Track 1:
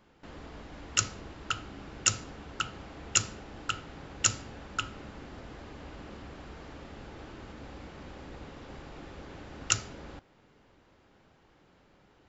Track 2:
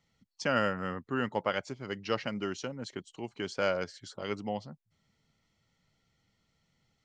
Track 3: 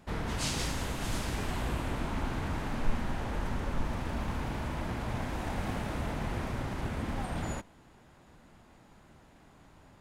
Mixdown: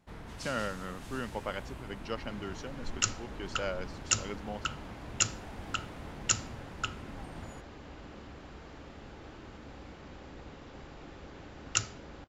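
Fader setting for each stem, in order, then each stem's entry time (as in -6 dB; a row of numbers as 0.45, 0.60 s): -2.5, -6.0, -11.5 dB; 2.05, 0.00, 0.00 s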